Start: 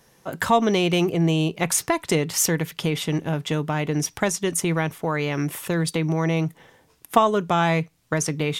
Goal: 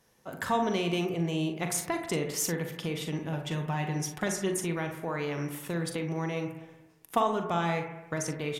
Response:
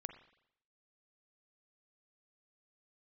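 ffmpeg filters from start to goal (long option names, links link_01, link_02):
-filter_complex "[0:a]asettb=1/sr,asplit=3[link_01][link_02][link_03];[link_01]atrim=end=3.324[link_04];[link_02]atrim=start=3.32:end=4.55,asetpts=PTS-STARTPTS,afade=type=in:duration=0.004:curve=qsin,afade=type=out:start_time=1.226:duration=0.004:curve=qsin,aecho=1:1:5.5:0.63,atrim=end_sample=54243[link_05];[link_03]atrim=start=4.546[link_06];[link_04][link_05]acrossfade=duration=0.004:curve1=hsin:curve2=qsin[link_07];[link_07][link_06]acrossfade=duration=0.004:curve1=qsin:curve2=hsin,aecho=1:1:41|57:0.355|0.178[link_08];[1:a]atrim=start_sample=2205,asetrate=31311,aresample=44100[link_09];[link_08][link_09]afir=irnorm=-1:irlink=0,volume=-7dB"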